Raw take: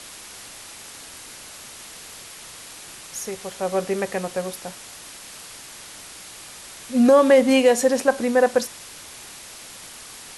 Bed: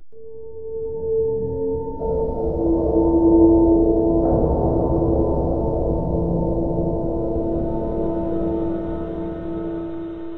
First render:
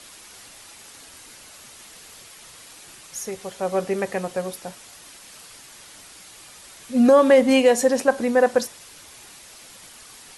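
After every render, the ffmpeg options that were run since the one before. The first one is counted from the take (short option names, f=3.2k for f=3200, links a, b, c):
-af "afftdn=nr=6:nf=-41"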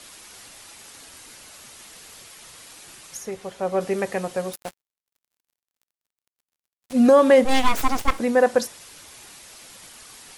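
-filter_complex "[0:a]asettb=1/sr,asplit=3[a][b][c];[a]atrim=end=3.174[d];[b]atrim=start=3.17:end=3.81,asetpts=PTS-STARTPTS,afade=t=in:d=0.004:c=qsin,afade=t=out:st=0.636:d=0.004:c=qsin,highshelf=f=3.8k:g=-8[e];[c]atrim=start=3.806[f];[d][e]acrossfade=d=0.004:c1=hsin:c2=qsin[g];[g][f]acrossfade=d=0.004:c1=qsin:c2=hsin,asettb=1/sr,asplit=3[h][i][j];[h]atrim=end=4.534[k];[i]atrim=start=4.53:end=6.93,asetpts=PTS-STARTPTS,afade=t=in:d=0.004:c=qsin,afade=t=out:st=2.396:d=0.004:c=qsin,acrusher=bits=4:mix=0:aa=0.5[l];[j]atrim=start=6.926[m];[k][l]acrossfade=d=0.004:c1=hsin:c2=qsin[n];[n][m]acrossfade=d=0.004:c1=qsin:c2=hsin,asplit=3[o][p][q];[o]afade=t=out:st=7.44:d=0.02[r];[p]aeval=exprs='abs(val(0))':c=same,afade=t=in:st=7.44:d=0.02,afade=t=out:st=8.18:d=0.02[s];[q]afade=t=in:st=8.18:d=0.02[t];[r][s][t]amix=inputs=3:normalize=0"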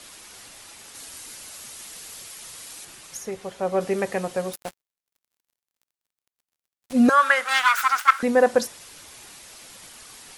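-filter_complex "[0:a]asettb=1/sr,asplit=3[a][b][c];[a]atrim=end=0.954[d];[b]atrim=start=0.95:end=2.85,asetpts=PTS-STARTPTS,afade=t=in:d=0.004:c=qsin,afade=t=out:st=1.896:d=0.004:c=qsin,highshelf=f=4.6k:g=7[e];[c]atrim=start=2.846[f];[d][e]acrossfade=d=0.004:c1=hsin:c2=qsin[g];[g][f]acrossfade=d=0.004:c1=qsin:c2=hsin,asettb=1/sr,asplit=3[h][i][j];[h]atrim=end=7.094[k];[i]atrim=start=7.09:end=8.23,asetpts=PTS-STARTPTS,afade=t=in:d=0.004:c=qsin,afade=t=out:st=1.136:d=0.004:c=qsin,highpass=f=1.4k:t=q:w=6.5[l];[j]atrim=start=8.226[m];[k][l]acrossfade=d=0.004:c1=hsin:c2=qsin[n];[n][m]acrossfade=d=0.004:c1=qsin:c2=hsin"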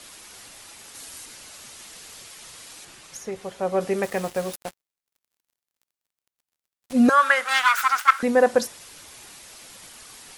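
-filter_complex "[0:a]asettb=1/sr,asplit=3[a][b][c];[a]atrim=end=1.254[d];[b]atrim=start=1.25:end=3.36,asetpts=PTS-STARTPTS,afade=t=in:d=0.004:c=qsin,afade=t=out:st=2.106:d=0.004:c=qsin,highshelf=f=11k:g=-12[e];[c]atrim=start=3.356[f];[d][e]acrossfade=d=0.004:c1=hsin:c2=qsin[g];[g][f]acrossfade=d=0.004:c1=qsin:c2=hsin,asettb=1/sr,asplit=3[h][i][j];[h]atrim=end=4.034[k];[i]atrim=start=4.03:end=4.6,asetpts=PTS-STARTPTS,afade=t=in:d=0.004:c=qsin,afade=t=out:st=0.566:d=0.004:c=qsin,acrusher=bits=5:mix=0:aa=0.5[l];[j]atrim=start=4.596[m];[k][l]acrossfade=d=0.004:c1=hsin:c2=qsin[n];[n][m]acrossfade=d=0.004:c1=qsin:c2=hsin"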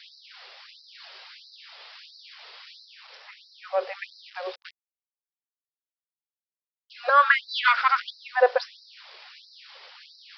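-af "aresample=11025,acrusher=bits=7:mix=0:aa=0.000001,aresample=44100,afftfilt=real='re*gte(b*sr/1024,380*pow(3900/380,0.5+0.5*sin(2*PI*1.5*pts/sr)))':imag='im*gte(b*sr/1024,380*pow(3900/380,0.5+0.5*sin(2*PI*1.5*pts/sr)))':win_size=1024:overlap=0.75"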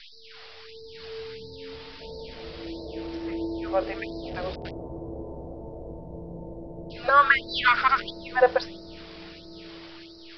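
-filter_complex "[1:a]volume=-18.5dB[a];[0:a][a]amix=inputs=2:normalize=0"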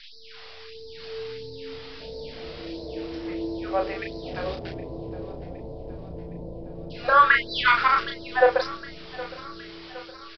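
-filter_complex "[0:a]asplit=2[a][b];[b]adelay=34,volume=-4dB[c];[a][c]amix=inputs=2:normalize=0,aecho=1:1:765|1530|2295|3060|3825:0.119|0.0666|0.0373|0.0209|0.0117"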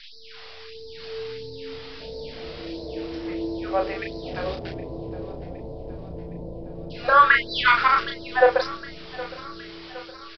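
-af "volume=1.5dB"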